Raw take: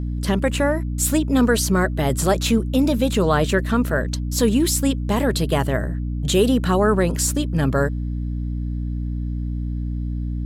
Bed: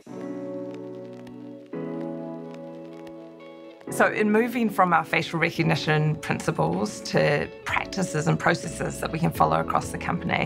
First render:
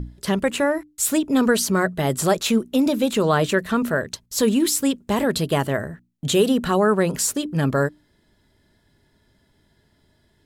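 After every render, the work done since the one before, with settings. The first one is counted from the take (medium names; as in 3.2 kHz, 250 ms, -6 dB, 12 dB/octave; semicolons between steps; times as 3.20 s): hum notches 60/120/180/240/300 Hz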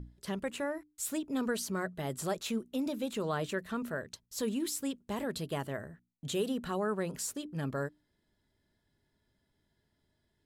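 trim -15 dB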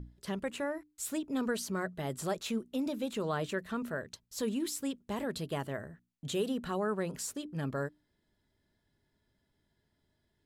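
treble shelf 7.8 kHz -3.5 dB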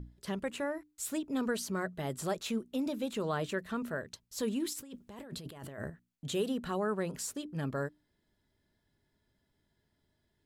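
4.73–5.90 s: compressor with a negative ratio -45 dBFS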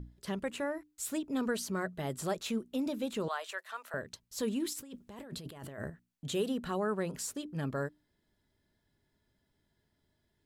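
3.28–3.94 s: high-pass 680 Hz 24 dB/octave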